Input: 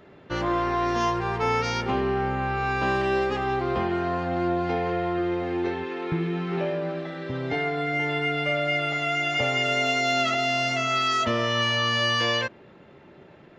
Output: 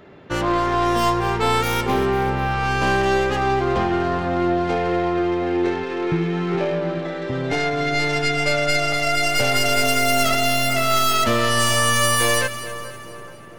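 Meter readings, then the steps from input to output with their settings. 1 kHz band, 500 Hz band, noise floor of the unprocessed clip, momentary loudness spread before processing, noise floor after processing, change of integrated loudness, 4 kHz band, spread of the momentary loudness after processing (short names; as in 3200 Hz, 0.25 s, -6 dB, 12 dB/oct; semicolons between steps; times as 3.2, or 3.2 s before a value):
+5.5 dB, +5.5 dB, -50 dBFS, 6 LU, -37 dBFS, +5.0 dB, +4.0 dB, 7 LU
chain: tracing distortion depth 0.21 ms; split-band echo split 1500 Hz, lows 0.427 s, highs 0.245 s, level -13 dB; gain +5 dB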